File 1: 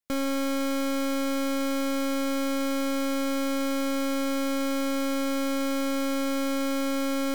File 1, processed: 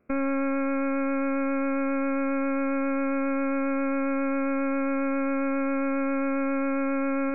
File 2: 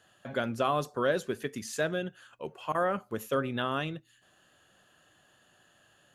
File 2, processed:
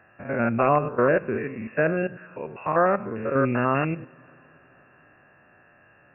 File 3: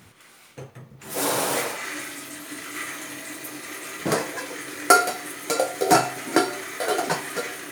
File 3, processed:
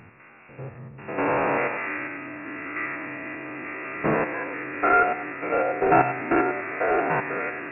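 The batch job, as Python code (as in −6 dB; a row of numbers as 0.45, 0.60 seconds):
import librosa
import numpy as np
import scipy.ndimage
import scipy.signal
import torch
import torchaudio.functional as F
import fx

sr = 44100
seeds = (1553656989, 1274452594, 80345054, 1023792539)

p1 = fx.spec_steps(x, sr, hold_ms=100)
p2 = fx.vibrato(p1, sr, rate_hz=7.4, depth_cents=9.2)
p3 = (np.mod(10.0 ** (18.5 / 20.0) * p2 + 1.0, 2.0) - 1.0) / 10.0 ** (18.5 / 20.0)
p4 = p2 + F.gain(torch.from_numpy(p3), -7.5).numpy()
p5 = fx.brickwall_lowpass(p4, sr, high_hz=2800.0)
p6 = fx.rev_double_slope(p5, sr, seeds[0], early_s=0.23, late_s=4.3, knee_db=-21, drr_db=17.5)
y = p6 * 10.0 ** (-26 / 20.0) / np.sqrt(np.mean(np.square(p6)))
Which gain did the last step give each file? −1.5, +7.0, +2.0 decibels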